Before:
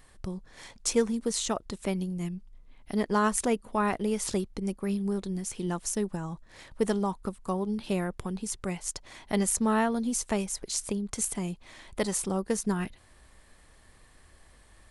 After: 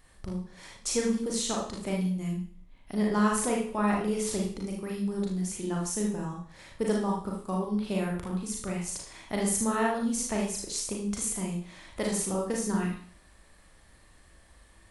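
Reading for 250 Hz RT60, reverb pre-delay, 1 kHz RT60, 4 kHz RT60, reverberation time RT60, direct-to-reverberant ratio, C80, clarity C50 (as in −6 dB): 0.50 s, 35 ms, 0.50 s, 0.50 s, 0.50 s, −2.0 dB, 9.0 dB, 3.0 dB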